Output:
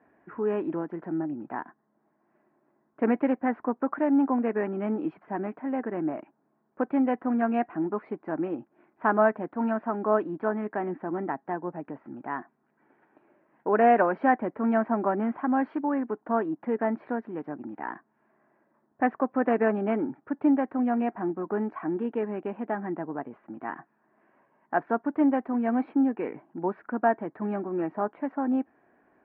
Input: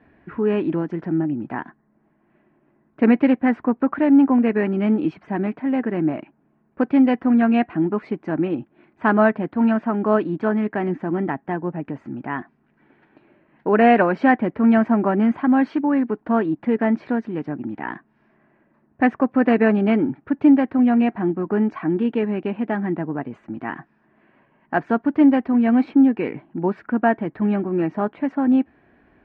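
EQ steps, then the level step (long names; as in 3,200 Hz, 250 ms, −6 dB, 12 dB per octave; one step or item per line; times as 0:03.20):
high-pass filter 750 Hz 6 dB per octave
low-pass filter 1,200 Hz 12 dB per octave
0.0 dB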